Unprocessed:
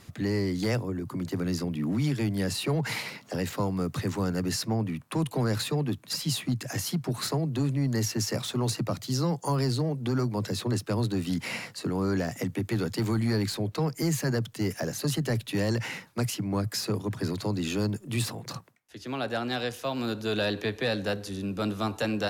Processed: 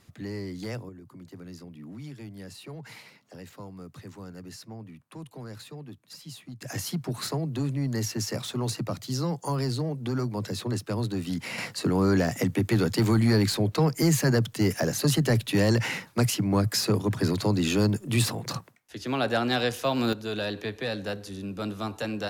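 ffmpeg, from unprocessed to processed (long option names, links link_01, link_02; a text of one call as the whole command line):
ffmpeg -i in.wav -af "asetnsamples=nb_out_samples=441:pad=0,asendcmd='0.89 volume volume -14dB;6.62 volume volume -1.5dB;11.58 volume volume 5dB;20.13 volume volume -3dB',volume=-7.5dB" out.wav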